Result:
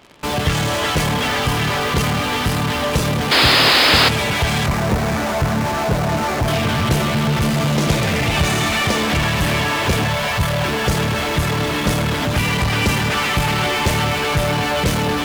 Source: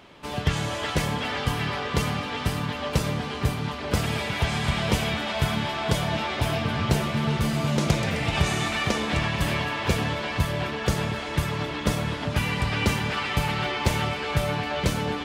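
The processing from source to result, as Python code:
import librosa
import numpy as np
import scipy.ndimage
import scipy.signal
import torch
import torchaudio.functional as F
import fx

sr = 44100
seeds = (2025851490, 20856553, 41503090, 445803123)

p1 = fx.median_filter(x, sr, points=15, at=(4.66, 6.48))
p2 = fx.cheby1_bandstop(p1, sr, low_hz=190.0, high_hz=550.0, order=2, at=(10.05, 10.65))
p3 = p2 + fx.echo_single(p2, sr, ms=794, db=-20.5, dry=0)
p4 = fx.spec_paint(p3, sr, seeds[0], shape='noise', start_s=3.31, length_s=0.78, low_hz=230.0, high_hz=5200.0, level_db=-17.0)
p5 = fx.fuzz(p4, sr, gain_db=45.0, gate_db=-42.0)
p6 = p4 + F.gain(torch.from_numpy(p5), -9.5).numpy()
y = F.gain(torch.from_numpy(p6), 1.0).numpy()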